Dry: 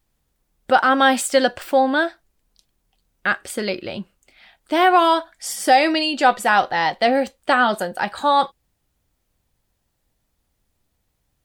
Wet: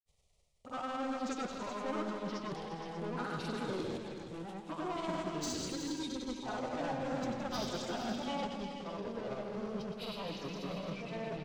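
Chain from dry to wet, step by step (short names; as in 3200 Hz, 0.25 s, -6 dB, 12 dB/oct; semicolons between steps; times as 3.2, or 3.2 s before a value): CVSD 64 kbps; spectral delete 5.67–6.42, 550–2200 Hz; reverse; compressor 5:1, threshold -31 dBFS, peak gain reduction 18 dB; reverse; envelope phaser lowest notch 260 Hz, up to 2900 Hz, full sweep at -31.5 dBFS; grains, grains 20/s, spray 36 ms, pitch spread up and down by 0 st; soft clip -34.5 dBFS, distortion -11 dB; grains, pitch spread up and down by 0 st; formant shift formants -3 st; on a send: tapped delay 95/165/275/373/470 ms -11/-9.5/-11.5/-9/-13.5 dB; on the sum: echoes that change speed 0.694 s, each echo -4 st, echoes 2; gain +1 dB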